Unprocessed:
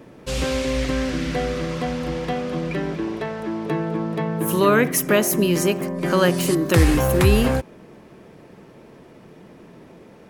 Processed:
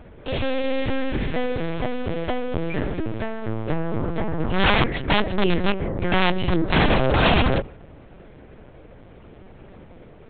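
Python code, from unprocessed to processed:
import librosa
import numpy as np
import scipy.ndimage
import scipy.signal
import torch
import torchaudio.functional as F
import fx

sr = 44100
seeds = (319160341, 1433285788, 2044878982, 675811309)

y = fx.hum_notches(x, sr, base_hz=60, count=2)
y = (np.mod(10.0 ** (11.0 / 20.0) * y + 1.0, 2.0) - 1.0) / 10.0 ** (11.0 / 20.0)
y = fx.lpc_vocoder(y, sr, seeds[0], excitation='pitch_kept', order=8)
y = y * librosa.db_to_amplitude(1.0)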